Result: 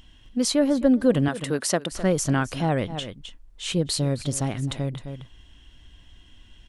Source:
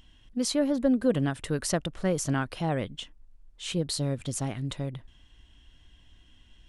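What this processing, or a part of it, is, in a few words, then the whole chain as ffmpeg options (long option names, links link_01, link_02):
ducked delay: -filter_complex "[0:a]asettb=1/sr,asplit=3[link_01][link_02][link_03];[link_01]atrim=end=1.284[link_04];[link_02]atrim=start=1.28:end=1.92,asetpts=PTS-STARTPTS,afade=type=in:duration=0.004:curve=qsin,afade=type=out:start_time=0.636:duration=0.004:curve=qsin,highpass=220[link_05];[link_03]atrim=start=1.916[link_06];[link_04][link_05]acrossfade=duration=0.004:curve1=hsin:curve2=qsin[link_07];[link_07][link_06]acrossfade=duration=0.004:curve1=qsin:curve2=hsin,asplit=3[link_08][link_09][link_10];[link_09]adelay=261,volume=-7dB[link_11];[link_10]apad=whole_len=306493[link_12];[link_11][link_12]sidechaincompress=threshold=-46dB:ratio=3:attack=39:release=106[link_13];[link_08][link_13]amix=inputs=2:normalize=0,volume=5dB"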